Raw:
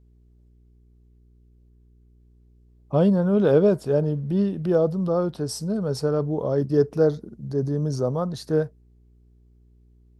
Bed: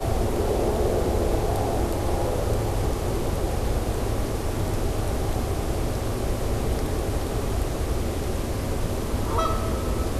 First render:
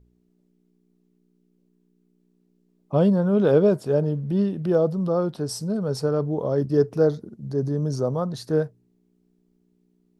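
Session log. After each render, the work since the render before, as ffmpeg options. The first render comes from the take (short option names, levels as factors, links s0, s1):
-af "bandreject=f=60:t=h:w=4,bandreject=f=120:t=h:w=4"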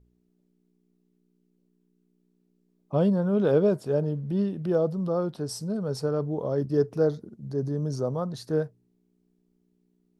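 -af "volume=0.631"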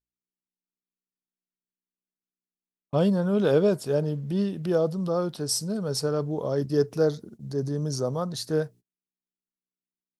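-af "agate=range=0.02:threshold=0.00501:ratio=16:detection=peak,highshelf=f=2200:g=11.5"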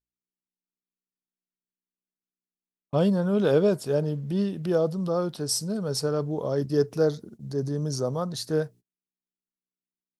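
-af anull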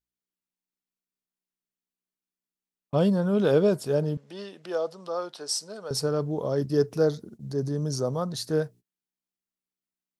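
-filter_complex "[0:a]asettb=1/sr,asplit=3[s0][s1][s2];[s0]atrim=end=4.174[s3];[s1]atrim=start=4.17:end=5.91,asetpts=PTS-STARTPTS,afade=t=in:d=0.004:c=qsin,afade=t=out:st=1.736:d=0.004:c=qsin,highpass=590,lowpass=7900[s4];[s2]atrim=start=5.906[s5];[s3][s4]acrossfade=d=0.004:c1=hsin:c2=qsin[s6];[s6][s5]acrossfade=d=0.004:c1=qsin:c2=hsin"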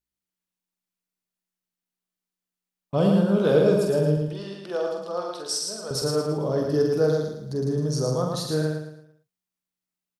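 -filter_complex "[0:a]asplit=2[s0][s1];[s1]adelay=46,volume=0.562[s2];[s0][s2]amix=inputs=2:normalize=0,aecho=1:1:111|222|333|444|555:0.668|0.254|0.0965|0.0367|0.0139"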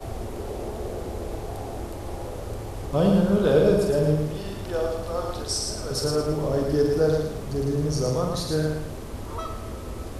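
-filter_complex "[1:a]volume=0.355[s0];[0:a][s0]amix=inputs=2:normalize=0"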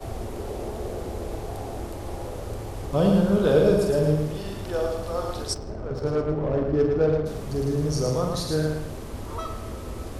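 -filter_complex "[0:a]asplit=3[s0][s1][s2];[s0]afade=t=out:st=5.53:d=0.02[s3];[s1]adynamicsmooth=sensitivity=1.5:basefreq=900,afade=t=in:st=5.53:d=0.02,afade=t=out:st=7.25:d=0.02[s4];[s2]afade=t=in:st=7.25:d=0.02[s5];[s3][s4][s5]amix=inputs=3:normalize=0"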